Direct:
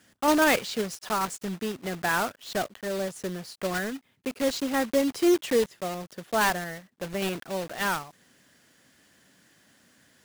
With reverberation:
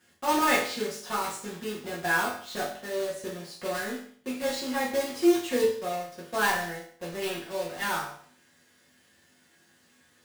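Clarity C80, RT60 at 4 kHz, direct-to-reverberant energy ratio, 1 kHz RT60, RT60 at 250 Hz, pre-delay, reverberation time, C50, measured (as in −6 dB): 9.5 dB, 0.50 s, −7.5 dB, 0.55 s, 0.55 s, 4 ms, 0.55 s, 5.5 dB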